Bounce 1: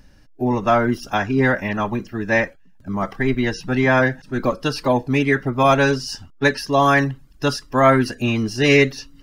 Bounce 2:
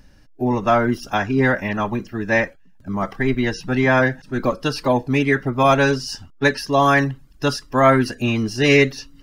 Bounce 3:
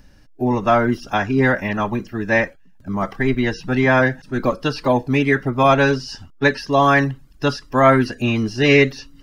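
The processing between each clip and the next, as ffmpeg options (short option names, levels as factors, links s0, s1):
-af anull
-filter_complex "[0:a]acrossover=split=5300[s0][s1];[s1]acompressor=threshold=0.00355:ratio=4:attack=1:release=60[s2];[s0][s2]amix=inputs=2:normalize=0,volume=1.12"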